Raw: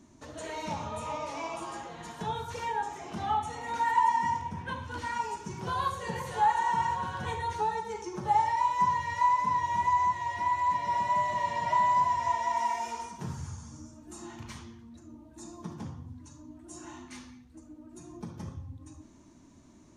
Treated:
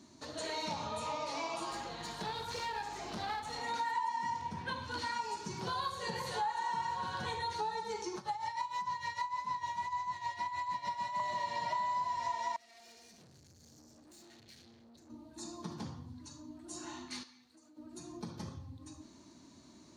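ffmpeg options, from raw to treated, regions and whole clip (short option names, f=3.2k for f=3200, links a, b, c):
-filter_complex "[0:a]asettb=1/sr,asplit=3[a][b][c];[a]atrim=end=1.714[d];[b]atrim=start=1.71:end=3.61,asetpts=PTS-STARTPTS,afade=t=in:d=0.004:c=qsin,afade=t=out:st=1.896:d=0.004:c=qsin,aeval=exprs='clip(val(0),-1,0.01)':c=same,aeval=exprs='val(0)+0.00355*(sin(2*PI*50*n/s)+sin(2*PI*2*50*n/s)/2+sin(2*PI*3*50*n/s)/3+sin(2*PI*4*50*n/s)/4+sin(2*PI*5*50*n/s)/5)':c=same[e];[c]atrim=start=3.606[f];[d][e]acrossfade=d=0.004:c1=hsin:c2=qsin[g];[g][f]acrossfade=d=0.004:c1=qsin:c2=hsin,asettb=1/sr,asplit=3[h][i][j];[h]atrim=end=8.164[k];[i]atrim=start=8.16:end=11.2,asetpts=PTS-STARTPTS,afade=t=in:d=0.004:c=qsin,afade=t=out:st=3.036:d=0.004:c=qsin,acrossover=split=260|680[l][m][n];[l]acompressor=threshold=-45dB:ratio=4[o];[m]acompressor=threshold=-52dB:ratio=4[p];[n]acompressor=threshold=-28dB:ratio=4[q];[o][p][q]amix=inputs=3:normalize=0,tremolo=f=6.6:d=0.74[r];[j]atrim=start=11.196[s];[k][r]acrossfade=d=0.004:c1=hsin:c2=qsin[t];[t][s]acrossfade=d=0.004:c1=qsin:c2=hsin,asettb=1/sr,asplit=3[u][v][w];[u]atrim=end=12.564[x];[v]atrim=start=12.56:end=15.1,asetpts=PTS-STARTPTS,afade=t=in:d=0.004:c=qsin,afade=t=out:st=2.536:d=0.004:c=qsin,acompressor=threshold=-45dB:ratio=4:attack=3.2:release=140:knee=1:detection=peak,asuperstop=centerf=1100:order=8:qfactor=1.6,aeval=exprs='(tanh(631*val(0)+0.65)-tanh(0.65))/631':c=same[y];[w]atrim=start=15.096[z];[x][y]acrossfade=d=0.004:c1=hsin:c2=qsin[aa];[aa][z]acrossfade=d=0.004:c1=qsin:c2=hsin,asettb=1/sr,asplit=3[ab][ac][ad];[ab]atrim=end=17.234[ae];[ac]atrim=start=17.23:end=17.77,asetpts=PTS-STARTPTS,afade=t=in:d=0.004:c=qsin,afade=t=out:st=0.536:d=0.004:c=qsin,highpass=f=660:p=1,acompressor=threshold=-59dB:ratio=3:attack=3.2:release=140:knee=1:detection=peak[af];[ad]atrim=start=17.766[ag];[ae][af]acrossfade=d=0.004:c1=hsin:c2=qsin[ah];[ah][ag]acrossfade=d=0.004:c1=qsin:c2=hsin,equalizer=f=4.3k:w=3.3:g=13,acompressor=threshold=-34dB:ratio=4,highpass=f=160:p=1"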